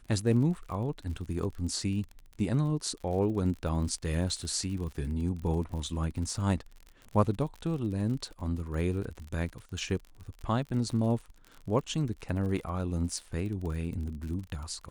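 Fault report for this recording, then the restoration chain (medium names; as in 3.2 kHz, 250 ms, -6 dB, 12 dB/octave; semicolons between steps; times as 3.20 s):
crackle 47 per s -38 dBFS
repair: de-click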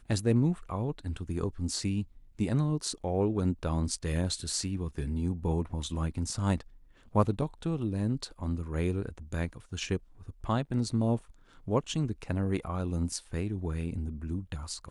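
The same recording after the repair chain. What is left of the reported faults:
nothing left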